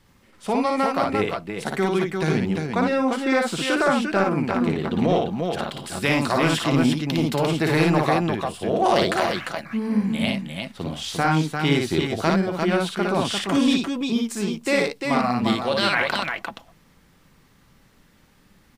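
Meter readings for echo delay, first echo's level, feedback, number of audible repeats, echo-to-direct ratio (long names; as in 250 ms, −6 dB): 57 ms, −3.0 dB, repeats not evenly spaced, 2, −0.5 dB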